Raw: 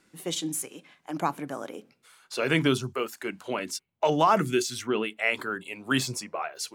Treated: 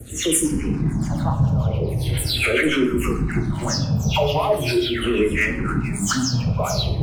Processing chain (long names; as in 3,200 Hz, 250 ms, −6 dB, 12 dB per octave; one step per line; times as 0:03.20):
every frequency bin delayed by itself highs early, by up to 221 ms
wind on the microphone 110 Hz −25 dBFS
camcorder AGC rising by 49 dB per second
high-pass filter 75 Hz 12 dB per octave
leveller curve on the samples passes 2
brickwall limiter −11 dBFS, peak gain reduction 4 dB
two-band tremolo in antiphase 7.4 Hz, depth 70%, crossover 870 Hz
convolution reverb RT60 0.85 s, pre-delay 6 ms, DRR 4.5 dB
wrong playback speed 25 fps video run at 24 fps
frequency shifter mixed with the dry sound −0.4 Hz